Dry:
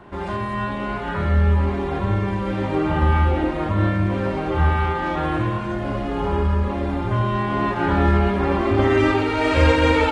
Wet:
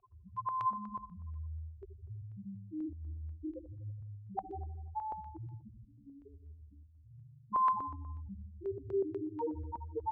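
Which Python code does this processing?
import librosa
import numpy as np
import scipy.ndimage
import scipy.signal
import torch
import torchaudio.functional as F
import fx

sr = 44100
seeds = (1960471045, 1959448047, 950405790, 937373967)

y = np.minimum(x, 2.0 * 10.0 ** (-11.0 / 20.0) - x)
y = fx.low_shelf(y, sr, hz=100.0, db=10.5)
y = fx.hum_notches(y, sr, base_hz=50, count=8)
y = 10.0 ** (-12.0 / 20.0) * np.tanh(y / 10.0 ** (-12.0 / 20.0))
y = fx.spec_topn(y, sr, count=1)
y = fx.vowel_filter(y, sr, vowel='a')
y = fx.comb_fb(y, sr, f0_hz=72.0, decay_s=0.78, harmonics='all', damping=0.0, mix_pct=80, at=(5.85, 7.52))
y = fx.echo_feedback(y, sr, ms=82, feedback_pct=55, wet_db=-11.5)
y = fx.filter_held_notch(y, sr, hz=8.2, low_hz=320.0, high_hz=3000.0)
y = F.gain(torch.from_numpy(y), 14.0).numpy()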